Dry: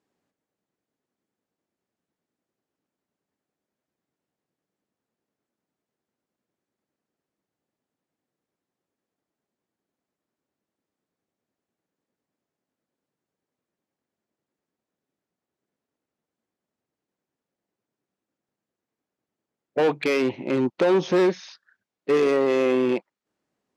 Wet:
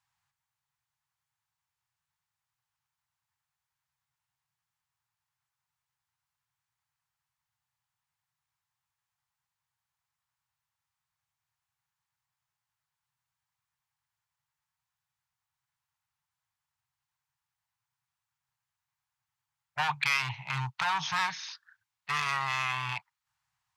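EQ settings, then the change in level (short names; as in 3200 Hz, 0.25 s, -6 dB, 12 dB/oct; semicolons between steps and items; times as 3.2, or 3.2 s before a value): elliptic band-stop 130–890 Hz, stop band 40 dB; +2.5 dB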